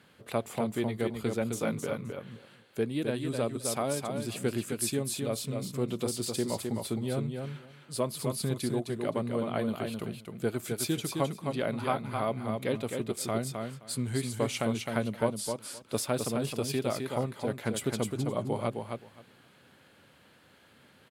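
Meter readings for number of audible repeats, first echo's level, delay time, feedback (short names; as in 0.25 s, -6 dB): 2, -5.0 dB, 0.261 s, 15%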